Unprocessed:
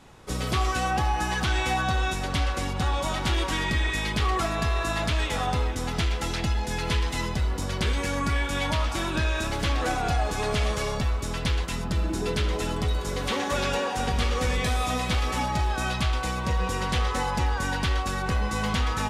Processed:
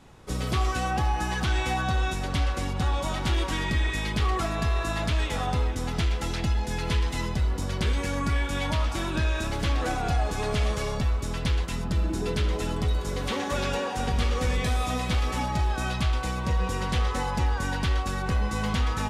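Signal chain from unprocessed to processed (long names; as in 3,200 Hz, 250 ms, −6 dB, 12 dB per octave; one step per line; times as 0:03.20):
low-shelf EQ 370 Hz +4 dB
level −3 dB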